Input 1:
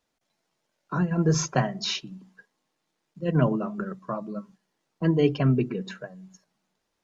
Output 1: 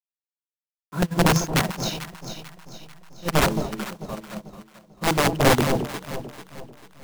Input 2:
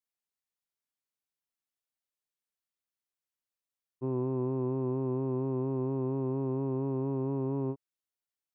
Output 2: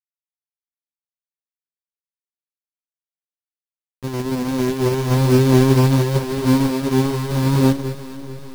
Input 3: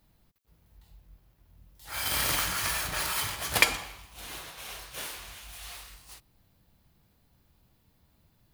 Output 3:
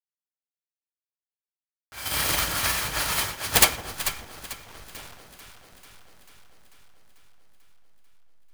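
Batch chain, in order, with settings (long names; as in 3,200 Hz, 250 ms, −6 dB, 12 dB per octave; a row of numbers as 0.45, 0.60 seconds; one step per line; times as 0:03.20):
hold until the input has moved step −32 dBFS
wrap-around overflow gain 16.5 dB
on a send: delay that swaps between a low-pass and a high-pass 221 ms, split 840 Hz, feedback 80%, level −2.5 dB
on the sum: expander for the loud parts 2.5 to 1, over −35 dBFS
normalise the peak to −3 dBFS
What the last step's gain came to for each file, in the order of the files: +6.5, +17.0, +11.0 decibels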